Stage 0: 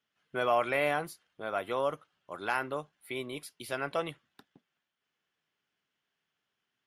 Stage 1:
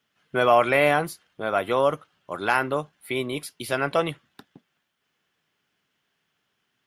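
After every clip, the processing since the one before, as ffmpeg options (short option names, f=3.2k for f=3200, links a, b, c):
-af "equalizer=f=120:t=o:w=2.7:g=3,volume=9dB"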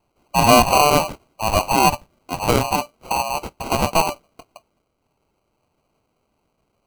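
-af "afreqshift=440,acrusher=samples=25:mix=1:aa=0.000001,volume=5.5dB"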